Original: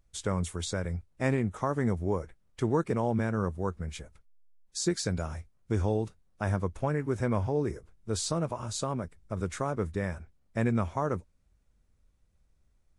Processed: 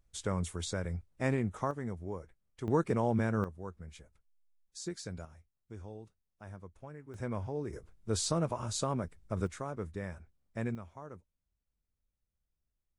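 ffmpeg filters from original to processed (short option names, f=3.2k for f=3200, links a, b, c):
-af "asetnsamples=n=441:p=0,asendcmd='1.71 volume volume -10.5dB;2.68 volume volume -1.5dB;3.44 volume volume -11.5dB;5.25 volume volume -18.5dB;7.14 volume volume -8.5dB;7.73 volume volume -1dB;9.47 volume volume -8dB;10.75 volume volume -17.5dB',volume=-3.5dB"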